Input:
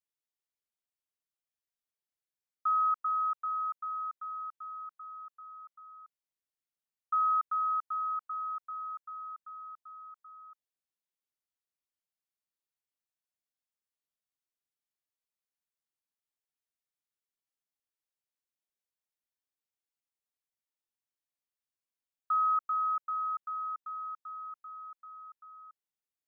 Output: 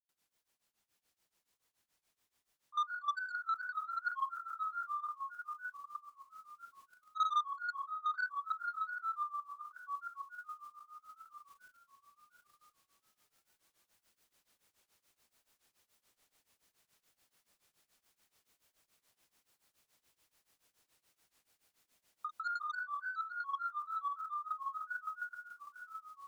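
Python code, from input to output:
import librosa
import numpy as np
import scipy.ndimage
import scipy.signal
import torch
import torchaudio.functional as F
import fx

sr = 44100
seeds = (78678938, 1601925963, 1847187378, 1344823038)

p1 = fx.reverse_delay_fb(x, sr, ms=360, feedback_pct=47, wet_db=-8.5)
p2 = scipy.signal.sosfilt(scipy.signal.butter(2, 1300.0, 'lowpass', fs=sr, output='sos'), p1)
p3 = fx.rev_spring(p2, sr, rt60_s=3.4, pass_ms=(44,), chirp_ms=25, drr_db=-9.0)
p4 = fx.quant_dither(p3, sr, seeds[0], bits=12, dither='triangular')
p5 = fx.level_steps(p4, sr, step_db=13)
p6 = p5 + fx.echo_single(p5, sr, ms=850, db=-4.0, dry=0)
p7 = 10.0 ** (-27.5 / 20.0) * np.tanh(p6 / 10.0 ** (-27.5 / 20.0))
p8 = fx.rider(p7, sr, range_db=3, speed_s=0.5)
p9 = fx.granulator(p8, sr, seeds[1], grain_ms=172.0, per_s=7.0, spray_ms=100.0, spread_st=3)
y = p9 * 10.0 ** (3.0 / 20.0)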